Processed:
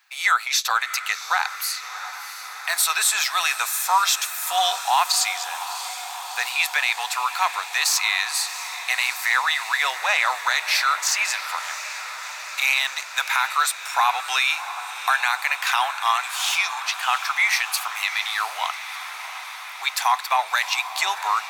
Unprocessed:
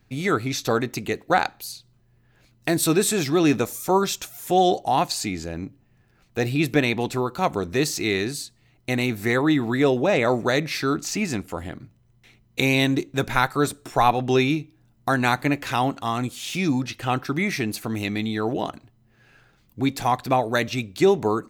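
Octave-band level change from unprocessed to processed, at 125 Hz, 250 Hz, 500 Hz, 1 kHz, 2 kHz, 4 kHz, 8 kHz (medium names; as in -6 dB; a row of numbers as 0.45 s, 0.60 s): under -40 dB, under -40 dB, -16.5 dB, +2.5 dB, +6.5 dB, +7.0 dB, +7.5 dB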